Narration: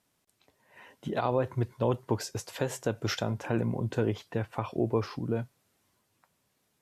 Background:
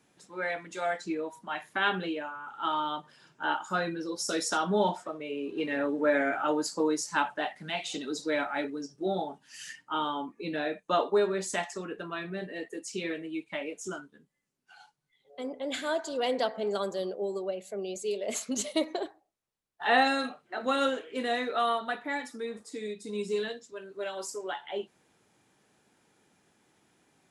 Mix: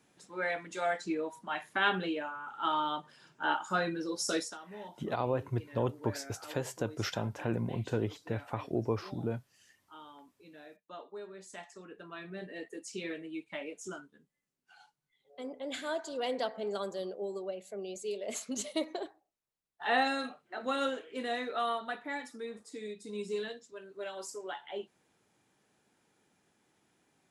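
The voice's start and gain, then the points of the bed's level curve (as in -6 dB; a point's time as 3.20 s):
3.95 s, -4.0 dB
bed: 4.37 s -1 dB
4.59 s -20.5 dB
11.10 s -20.5 dB
12.49 s -5 dB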